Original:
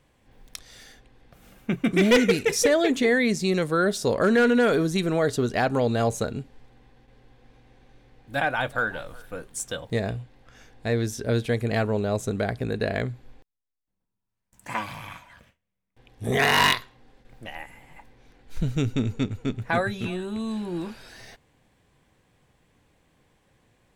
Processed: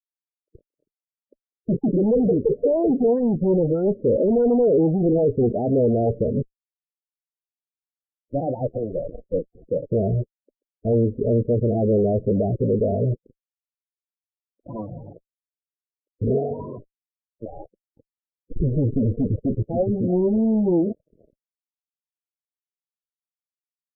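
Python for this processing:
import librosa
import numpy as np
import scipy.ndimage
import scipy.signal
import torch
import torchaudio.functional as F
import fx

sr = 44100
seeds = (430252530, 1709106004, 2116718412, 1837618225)

y = fx.law_mismatch(x, sr, coded='A')
y = fx.fuzz(y, sr, gain_db=45.0, gate_db=-42.0)
y = fx.ladder_lowpass(y, sr, hz=690.0, resonance_pct=30)
y = fx.spec_topn(y, sr, count=16)
y = fx.upward_expand(y, sr, threshold_db=-30.0, expansion=1.5)
y = y * 10.0 ** (3.0 / 20.0)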